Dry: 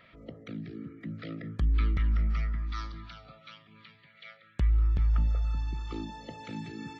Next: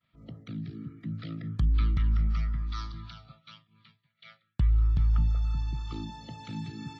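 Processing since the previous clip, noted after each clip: expander -47 dBFS; ten-band graphic EQ 125 Hz +8 dB, 500 Hz -10 dB, 1 kHz +3 dB, 2 kHz -6 dB, 4 kHz +4 dB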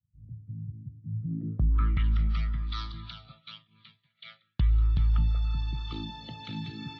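low-pass sweep 100 Hz -> 3.7 kHz, 1.14–2.07 s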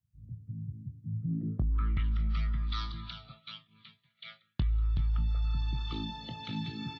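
compression, threshold -26 dBFS, peak gain reduction 6.5 dB; doubling 23 ms -12 dB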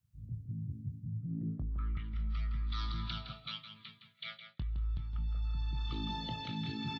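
reverse; compression 6:1, threshold -39 dBFS, peak gain reduction 14.5 dB; reverse; echo from a far wall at 28 m, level -8 dB; trim +3.5 dB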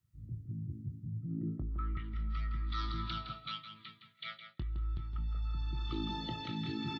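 small resonant body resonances 340/1300/1900 Hz, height 11 dB, ringing for 45 ms; trim -1 dB

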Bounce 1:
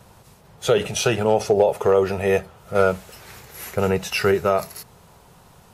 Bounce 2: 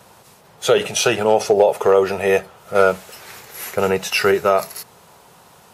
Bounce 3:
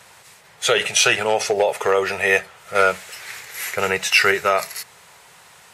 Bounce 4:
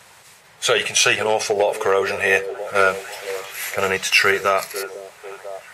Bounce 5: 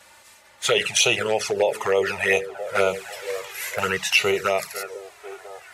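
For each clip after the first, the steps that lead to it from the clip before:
high-pass 350 Hz 6 dB/octave; trim +5 dB
graphic EQ 250/2000/4000/8000 Hz -6/+12/+4/+8 dB; trim -4.5 dB
repeats whose band climbs or falls 496 ms, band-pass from 360 Hz, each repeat 0.7 oct, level -8.5 dB
touch-sensitive flanger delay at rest 3.6 ms, full sweep at -12.5 dBFS

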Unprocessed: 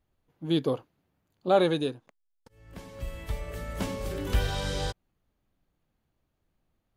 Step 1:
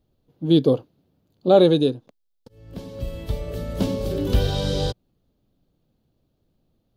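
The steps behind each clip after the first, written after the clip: graphic EQ 125/250/500/1000/2000/4000/8000 Hz +5/+5/+5/-4/-9/+6/-6 dB; trim +4.5 dB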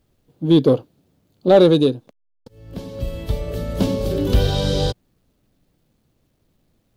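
in parallel at -5 dB: overload inside the chain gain 14 dB; on the sum: word length cut 12-bit, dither none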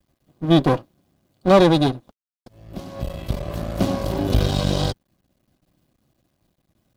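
half-wave rectifier; comb of notches 450 Hz; trim +3.5 dB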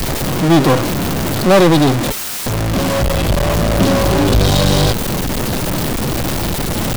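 jump at every zero crossing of -26 dBFS; power-law waveshaper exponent 0.5; trim -1 dB

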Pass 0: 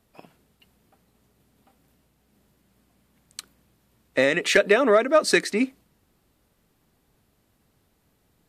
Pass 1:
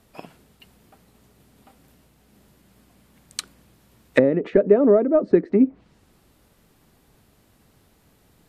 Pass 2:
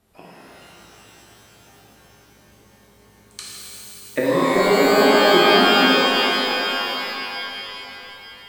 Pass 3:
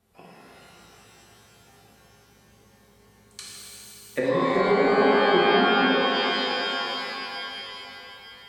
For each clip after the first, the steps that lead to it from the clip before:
low-pass that closes with the level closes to 410 Hz, closed at -19.5 dBFS; trim +8 dB
pitch-shifted reverb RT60 3.5 s, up +12 st, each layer -2 dB, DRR -7.5 dB; trim -7.5 dB
comb of notches 310 Hz; low-pass that closes with the level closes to 2.7 kHz, closed at -13 dBFS; trim -3.5 dB

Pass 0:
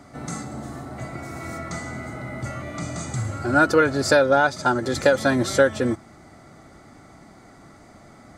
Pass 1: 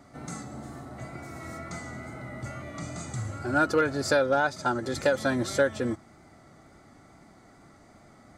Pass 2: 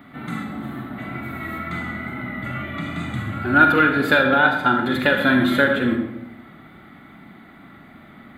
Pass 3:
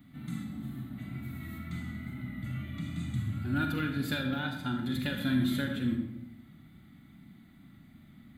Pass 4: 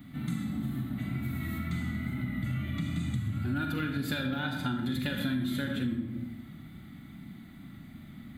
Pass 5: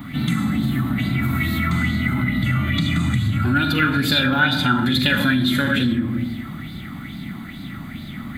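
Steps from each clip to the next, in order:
hard clipper -7.5 dBFS, distortion -30 dB; wow and flutter 28 cents; trim -6.5 dB
FFT filter 100 Hz 0 dB, 220 Hz +11 dB, 520 Hz -1 dB, 1.7 kHz +11 dB, 3.6 kHz +12 dB, 5.4 kHz -19 dB, 9.1 kHz -8 dB, 13 kHz +12 dB; on a send at -3.5 dB: reverberation RT60 0.90 s, pre-delay 34 ms; on the sum: trim +1 dB
FFT filter 130 Hz 0 dB, 270 Hz -6 dB, 410 Hz -18 dB, 1.4 kHz -18 dB, 5.7 kHz -1 dB; trim -4 dB
compression 6:1, threshold -36 dBFS, peak gain reduction 12 dB; trim +7.5 dB
in parallel at +2.5 dB: peak limiter -28.5 dBFS, peak gain reduction 8.5 dB; on the sum: sweeping bell 2.3 Hz 990–4400 Hz +12 dB; trim +6.5 dB

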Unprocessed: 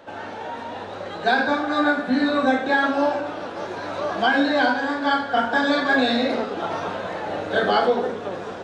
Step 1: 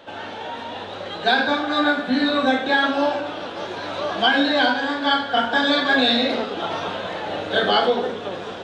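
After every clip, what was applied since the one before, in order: peaking EQ 3.3 kHz +9.5 dB 0.75 oct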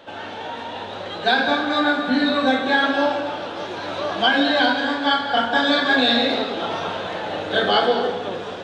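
reverberation RT60 0.90 s, pre-delay 153 ms, DRR 8.5 dB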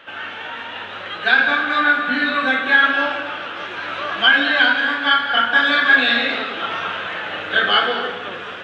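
high-order bell 1.9 kHz +13 dB; trim -5.5 dB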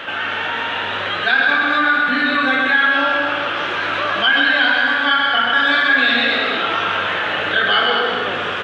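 on a send: loudspeakers at several distances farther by 44 m -5 dB, 75 m -10 dB; on the sum: level flattener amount 50%; trim -3.5 dB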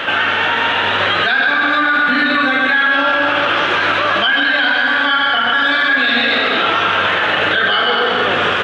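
peak limiter -14.5 dBFS, peak gain reduction 11 dB; trim +8.5 dB

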